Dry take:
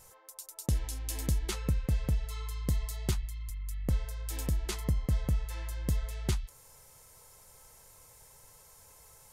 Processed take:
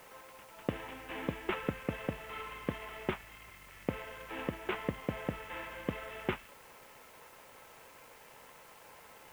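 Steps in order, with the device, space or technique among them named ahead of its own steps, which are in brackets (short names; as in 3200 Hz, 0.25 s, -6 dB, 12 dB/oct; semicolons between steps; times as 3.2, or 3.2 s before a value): army field radio (BPF 310–3200 Hz; CVSD 16 kbps; white noise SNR 20 dB); gain +7 dB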